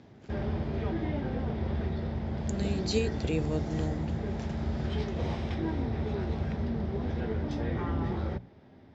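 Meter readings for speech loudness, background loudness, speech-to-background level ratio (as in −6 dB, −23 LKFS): −34.0 LKFS, −33.5 LKFS, −0.5 dB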